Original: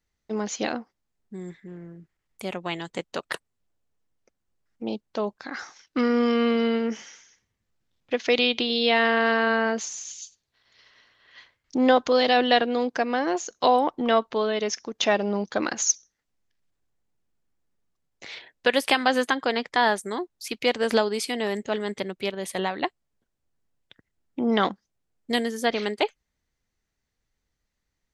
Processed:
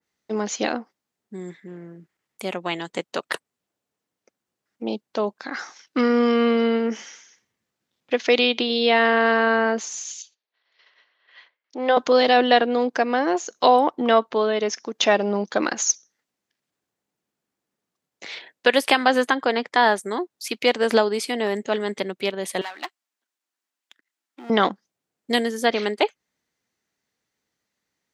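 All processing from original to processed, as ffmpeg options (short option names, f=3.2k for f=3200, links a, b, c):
-filter_complex "[0:a]asettb=1/sr,asplit=3[a][b][c];[a]atrim=end=10.224[d];[b]atrim=start=10.22:end=11.97,asetpts=PTS-STARTPTS,afade=t=in:d=0.004:c=qsin,afade=t=out:st=1.746:d=0.004:c=qsin,agate=range=-6dB:threshold=-59dB:ratio=16:release=100:detection=peak,highpass=530,lowpass=3.1k,equalizer=f=1.3k:t=o:w=1.7:g=-3.5[e];[c]atrim=start=11.966[f];[d][e]acrossfade=d=0.004:c1=hsin:c2=qsin[g];[g][f]acrossfade=d=0.004:c1=qsin:c2=hsin,asettb=1/sr,asplit=3[h][i][j];[h]atrim=end=22.614[k];[i]atrim=start=22.61:end=24.5,asetpts=PTS-STARTPTS,afade=t=in:d=0.004:c=qsin,afade=t=out:st=1.886:d=0.004:c=qsin,aeval=exprs='if(lt(val(0),0),0.251*val(0),val(0))':c=same,highpass=f=320:w=0.5412,highpass=f=320:w=1.3066,equalizer=f=470:t=o:w=1.2:g=-15[l];[j]atrim=start=24.496[m];[k][l]acrossfade=d=0.004:c1=hsin:c2=qsin[n];[n][m]acrossfade=d=0.004:c1=qsin:c2=hsin,highpass=190,adynamicequalizer=threshold=0.0141:dfrequency=2100:dqfactor=0.7:tfrequency=2100:tqfactor=0.7:attack=5:release=100:ratio=0.375:range=2.5:mode=cutabove:tftype=highshelf,volume=4dB"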